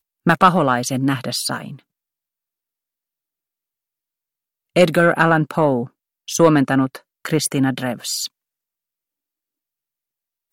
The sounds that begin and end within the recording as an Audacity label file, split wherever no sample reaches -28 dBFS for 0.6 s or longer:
4.760000	8.260000	sound